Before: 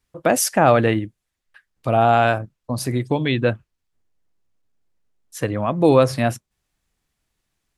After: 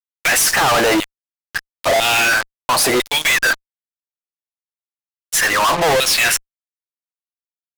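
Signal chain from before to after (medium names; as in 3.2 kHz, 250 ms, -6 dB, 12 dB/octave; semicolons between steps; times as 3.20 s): LFO high-pass saw down 1 Hz 570–3400 Hz; peak limiter -11 dBFS, peak gain reduction 11.5 dB; fuzz box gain 47 dB, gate -45 dBFS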